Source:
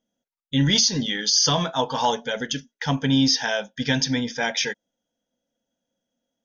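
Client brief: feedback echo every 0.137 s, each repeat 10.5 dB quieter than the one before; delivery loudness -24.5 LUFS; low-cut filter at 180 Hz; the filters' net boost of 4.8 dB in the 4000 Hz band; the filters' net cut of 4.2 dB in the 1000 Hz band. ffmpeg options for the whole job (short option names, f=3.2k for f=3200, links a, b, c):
-af "highpass=180,equalizer=f=1k:t=o:g=-5.5,equalizer=f=4k:t=o:g=6.5,aecho=1:1:137|274|411:0.299|0.0896|0.0269,volume=-5.5dB"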